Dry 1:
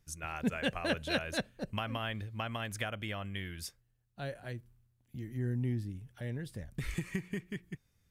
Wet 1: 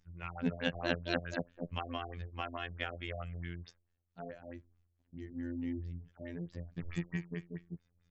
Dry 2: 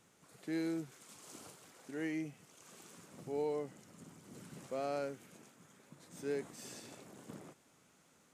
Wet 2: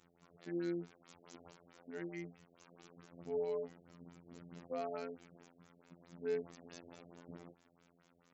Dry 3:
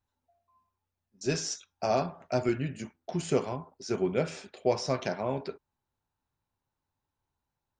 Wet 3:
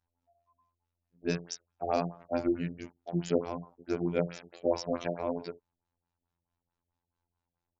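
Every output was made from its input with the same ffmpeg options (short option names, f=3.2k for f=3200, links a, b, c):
-af "afftfilt=real='hypot(re,im)*cos(PI*b)':imag='0':win_size=2048:overlap=0.75,afftfilt=real='re*lt(b*sr/1024,680*pow(7900/680,0.5+0.5*sin(2*PI*4.6*pts/sr)))':imag='im*lt(b*sr/1024,680*pow(7900/680,0.5+0.5*sin(2*PI*4.6*pts/sr)))':win_size=1024:overlap=0.75,volume=2dB"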